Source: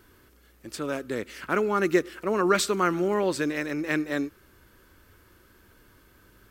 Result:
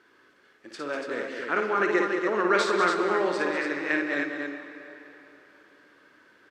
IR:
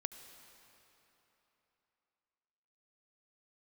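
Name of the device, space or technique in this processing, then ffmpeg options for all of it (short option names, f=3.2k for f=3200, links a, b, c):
station announcement: -filter_complex "[0:a]highpass=310,lowpass=4.7k,equalizer=f=1.7k:t=o:w=0.56:g=5,aecho=1:1:55.39|195.3|285.7:0.562|0.355|0.562[a];[1:a]atrim=start_sample=2205[b];[a][b]afir=irnorm=-1:irlink=0"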